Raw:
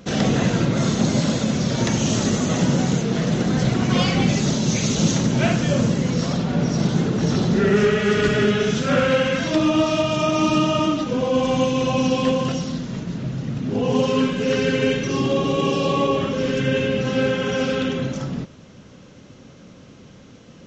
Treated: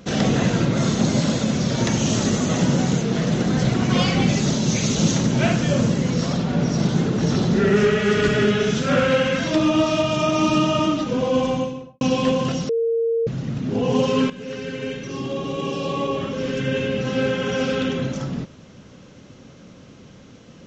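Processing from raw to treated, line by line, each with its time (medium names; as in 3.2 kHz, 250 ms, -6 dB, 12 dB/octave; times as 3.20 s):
11.33–12.01 s: studio fade out
12.69–13.27 s: bleep 459 Hz -17.5 dBFS
14.30–17.89 s: fade in, from -12.5 dB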